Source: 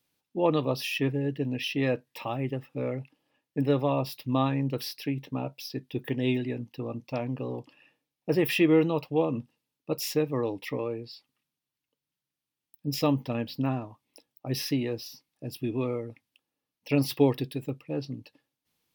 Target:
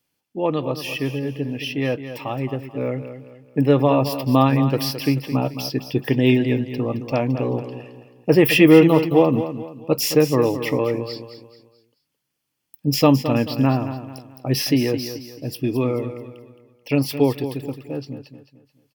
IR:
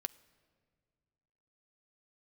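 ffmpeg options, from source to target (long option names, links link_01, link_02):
-af "dynaudnorm=framelen=370:gausssize=17:maxgain=9dB,bandreject=frequency=3800:width=10,aecho=1:1:217|434|651|868:0.282|0.104|0.0386|0.0143,volume=2.5dB"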